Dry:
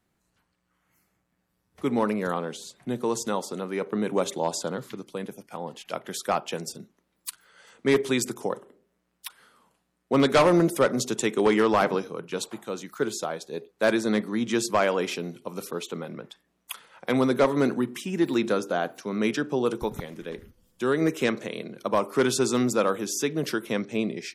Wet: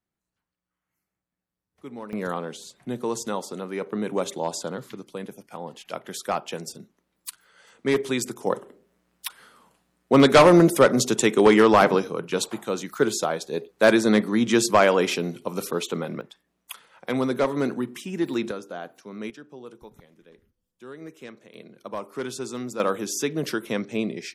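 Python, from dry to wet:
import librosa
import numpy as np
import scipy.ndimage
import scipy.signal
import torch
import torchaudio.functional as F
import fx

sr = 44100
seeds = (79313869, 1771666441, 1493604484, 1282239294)

y = fx.gain(x, sr, db=fx.steps((0.0, -13.5), (2.13, -1.0), (8.47, 5.5), (16.21, -2.0), (18.51, -9.0), (19.3, -17.0), (21.54, -9.0), (22.8, 0.5)))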